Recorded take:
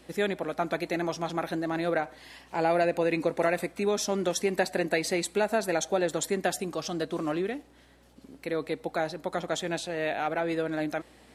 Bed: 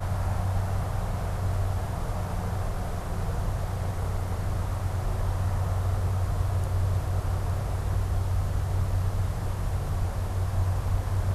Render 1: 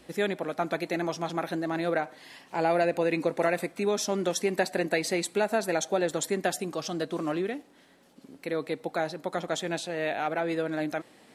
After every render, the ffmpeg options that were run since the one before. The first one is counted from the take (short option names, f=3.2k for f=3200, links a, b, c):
-af "bandreject=f=60:t=h:w=4,bandreject=f=120:t=h:w=4"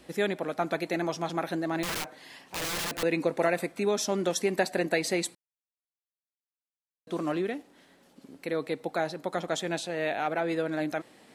-filter_complex "[0:a]asettb=1/sr,asplit=3[a][b][c];[a]atrim=end=1.834[d];[b]atrim=start=1.83:end=3.03,asetpts=PTS-STARTPTS,afade=t=in:d=0.004:c=qsin,afade=t=out:st=1.196:d=0.004:c=qsin,aeval=exprs='(mod(23.7*val(0)+1,2)-1)/23.7':c=same[e];[c]atrim=start=3.026[f];[d][e]acrossfade=d=0.004:c1=hsin:c2=qsin[g];[g][f]acrossfade=d=0.004:c1=qsin:c2=hsin,asplit=3[h][i][j];[h]atrim=end=5.35,asetpts=PTS-STARTPTS,afade=t=out:st=5.346:d=0.004:c=hsin[k];[i]atrim=start=5.35:end=7.07,asetpts=PTS-STARTPTS,volume=0[l];[j]atrim=start=7.07,asetpts=PTS-STARTPTS,afade=t=in:d=0.004:c=hsin[m];[k][l][m]concat=n=3:v=0:a=1"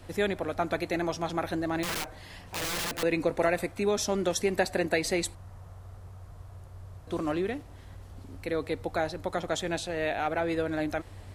-filter_complex "[1:a]volume=-19.5dB[a];[0:a][a]amix=inputs=2:normalize=0"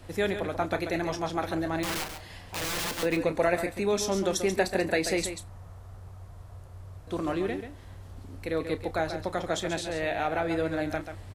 -filter_complex "[0:a]asplit=2[a][b];[b]adelay=31,volume=-12.5dB[c];[a][c]amix=inputs=2:normalize=0,aecho=1:1:137:0.355"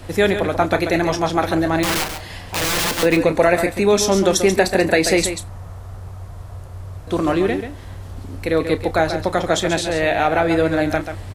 -af "volume=11.5dB,alimiter=limit=-3dB:level=0:latency=1"